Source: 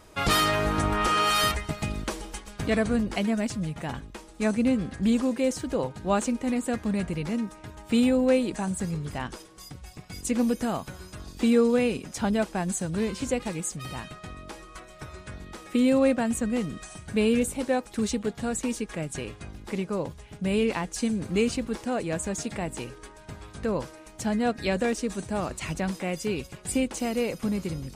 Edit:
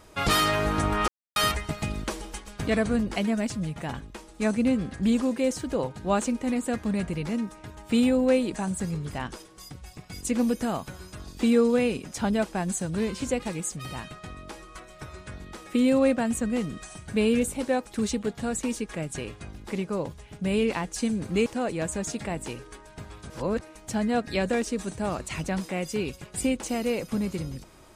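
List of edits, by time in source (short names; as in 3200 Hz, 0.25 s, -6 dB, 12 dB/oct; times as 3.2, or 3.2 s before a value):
1.08–1.36 mute
21.46–21.77 cut
23.61–23.92 reverse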